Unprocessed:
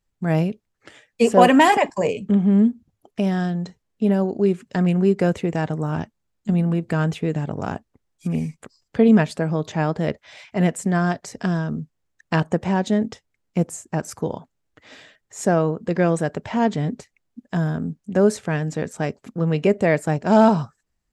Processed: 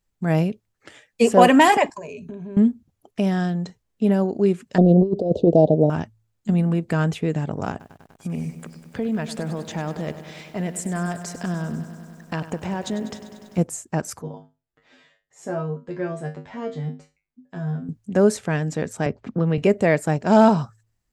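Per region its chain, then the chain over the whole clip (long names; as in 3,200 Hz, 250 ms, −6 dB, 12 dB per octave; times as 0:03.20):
0:01.95–0:02.57: EQ curve with evenly spaced ripples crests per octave 1.5, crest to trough 14 dB + downward compressor 8 to 1, threshold −32 dBFS
0:04.78–0:05.90: drawn EQ curve 120 Hz 0 dB, 640 Hz +13 dB, 1,200 Hz −24 dB, 3,800 Hz −1 dB, 9,200 Hz −25 dB + compressor whose output falls as the input rises −14 dBFS, ratio −0.5 + Butterworth band-reject 2,000 Hz, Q 0.74
0:07.70–0:13.58: downward compressor 3 to 1, threshold −25 dBFS + feedback echo at a low word length 98 ms, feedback 80%, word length 9 bits, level −13 dB
0:14.22–0:17.89: high-shelf EQ 6,000 Hz −11.5 dB + tuned comb filter 51 Hz, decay 0.26 s, harmonics odd, mix 100%
0:19.06–0:19.58: high-frequency loss of the air 180 metres + multiband upward and downward compressor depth 70%
whole clip: high-shelf EQ 8,100 Hz +4 dB; hum removal 54.95 Hz, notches 2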